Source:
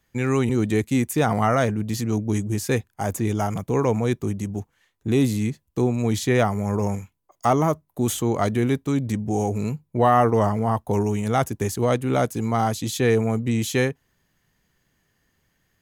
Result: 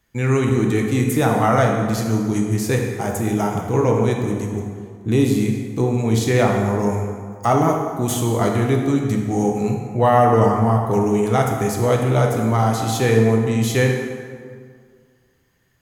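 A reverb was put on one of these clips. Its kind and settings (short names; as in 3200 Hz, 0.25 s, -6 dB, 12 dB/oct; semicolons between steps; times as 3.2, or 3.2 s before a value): plate-style reverb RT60 2 s, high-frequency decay 0.6×, DRR 0.5 dB; gain +1 dB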